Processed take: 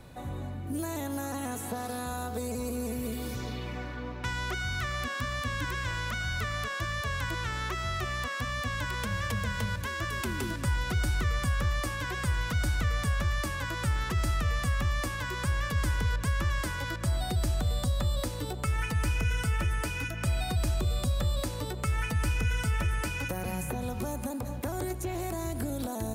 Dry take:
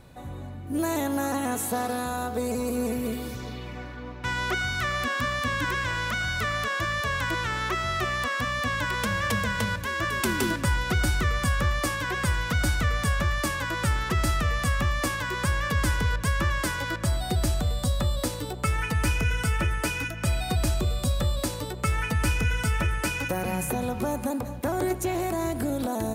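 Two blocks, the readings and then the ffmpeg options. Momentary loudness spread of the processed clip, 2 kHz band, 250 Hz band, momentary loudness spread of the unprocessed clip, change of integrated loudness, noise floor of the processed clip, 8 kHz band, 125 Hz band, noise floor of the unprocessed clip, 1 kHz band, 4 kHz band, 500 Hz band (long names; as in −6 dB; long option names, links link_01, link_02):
6 LU, −6.0 dB, −6.0 dB, 5 LU, −4.5 dB, −37 dBFS, −5.5 dB, −2.5 dB, −37 dBFS, −6.5 dB, −5.0 dB, −6.5 dB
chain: -filter_complex "[0:a]acrossover=split=120|3700[link_01][link_02][link_03];[link_01]acompressor=threshold=-27dB:ratio=4[link_04];[link_02]acompressor=threshold=-35dB:ratio=4[link_05];[link_03]acompressor=threshold=-43dB:ratio=4[link_06];[link_04][link_05][link_06]amix=inputs=3:normalize=0,volume=1dB"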